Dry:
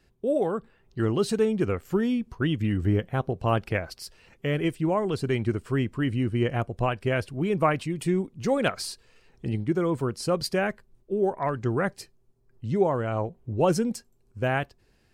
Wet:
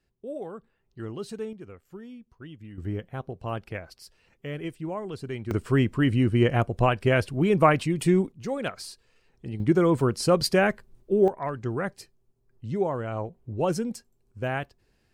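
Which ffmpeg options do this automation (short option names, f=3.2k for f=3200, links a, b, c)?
-af "asetnsamples=n=441:p=0,asendcmd='1.53 volume volume -18dB;2.78 volume volume -8dB;5.51 volume volume 4dB;8.32 volume volume -6dB;9.6 volume volume 4.5dB;11.28 volume volume -3.5dB',volume=-11dB"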